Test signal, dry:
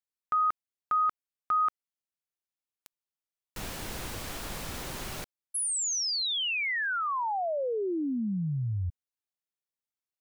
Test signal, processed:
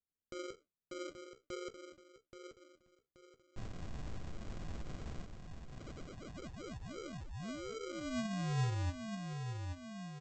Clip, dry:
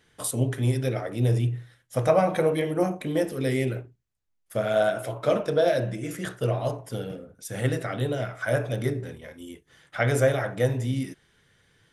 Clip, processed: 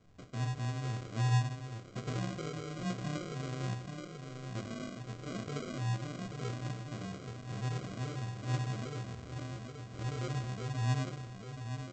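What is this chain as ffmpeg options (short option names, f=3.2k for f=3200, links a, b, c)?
-filter_complex "[0:a]flanger=delay=8.5:depth=8.3:regen=53:speed=1.1:shape=triangular,acompressor=threshold=-52dB:ratio=2:attack=2.1:release=72:detection=rms,asplit=2[a][b];[b]adelay=828,lowpass=f=1.3k:p=1,volume=-5.5dB,asplit=2[c][d];[d]adelay=828,lowpass=f=1.3k:p=1,volume=0.47,asplit=2[e][f];[f]adelay=828,lowpass=f=1.3k:p=1,volume=0.47,asplit=2[g][h];[h]adelay=828,lowpass=f=1.3k:p=1,volume=0.47,asplit=2[i][j];[j]adelay=828,lowpass=f=1.3k:p=1,volume=0.47,asplit=2[k][l];[l]adelay=828,lowpass=f=1.3k:p=1,volume=0.47[m];[c][e][g][i][k][m]amix=inputs=6:normalize=0[n];[a][n]amix=inputs=2:normalize=0,flanger=delay=2.8:depth=6.1:regen=80:speed=0.42:shape=triangular,bass=f=250:g=12,treble=f=4k:g=-6,aresample=16000,acrusher=samples=18:mix=1:aa=0.000001,aresample=44100,volume=3dB"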